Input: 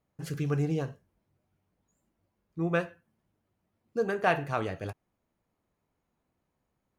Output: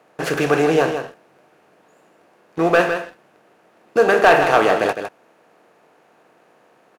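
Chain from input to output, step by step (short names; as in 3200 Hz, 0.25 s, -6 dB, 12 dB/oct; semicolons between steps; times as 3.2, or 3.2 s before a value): per-bin compression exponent 0.6; HPF 330 Hz 12 dB/oct; high shelf 9700 Hz -8 dB; sample leveller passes 2; on a send: echo 0.158 s -8.5 dB; on the sum: gain +6.5 dB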